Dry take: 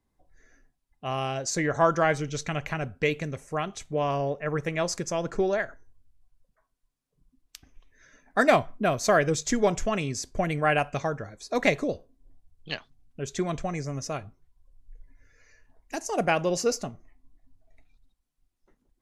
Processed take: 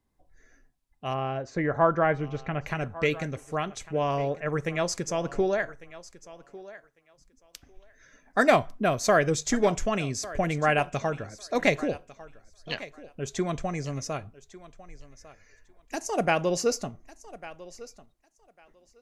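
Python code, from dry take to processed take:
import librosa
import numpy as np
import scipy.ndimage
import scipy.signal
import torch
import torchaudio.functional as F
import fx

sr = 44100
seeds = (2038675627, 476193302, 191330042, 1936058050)

p1 = fx.lowpass(x, sr, hz=1900.0, slope=12, at=(1.13, 2.65), fade=0.02)
y = p1 + fx.echo_thinned(p1, sr, ms=1150, feedback_pct=17, hz=260.0, wet_db=-17, dry=0)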